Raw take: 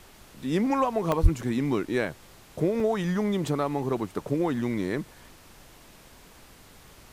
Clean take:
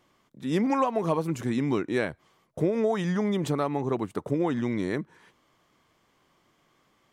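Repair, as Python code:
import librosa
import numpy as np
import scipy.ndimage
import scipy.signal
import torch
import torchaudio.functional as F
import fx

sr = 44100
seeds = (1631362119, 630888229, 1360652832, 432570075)

y = fx.highpass(x, sr, hz=140.0, slope=24, at=(1.22, 1.34), fade=0.02)
y = fx.fix_interpolate(y, sr, at_s=(1.12, 2.8), length_ms=1.7)
y = fx.noise_reduce(y, sr, print_start_s=5.74, print_end_s=6.24, reduce_db=15.0)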